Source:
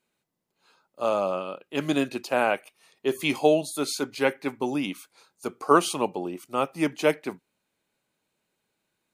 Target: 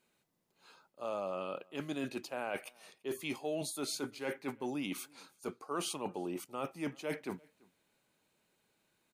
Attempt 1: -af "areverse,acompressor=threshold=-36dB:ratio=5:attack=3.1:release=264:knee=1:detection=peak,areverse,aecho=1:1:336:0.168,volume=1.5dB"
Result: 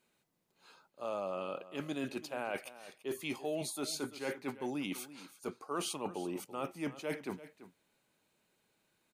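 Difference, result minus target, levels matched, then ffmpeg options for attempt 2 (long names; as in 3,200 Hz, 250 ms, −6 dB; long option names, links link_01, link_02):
echo-to-direct +11.5 dB
-af "areverse,acompressor=threshold=-36dB:ratio=5:attack=3.1:release=264:knee=1:detection=peak,areverse,aecho=1:1:336:0.0447,volume=1.5dB"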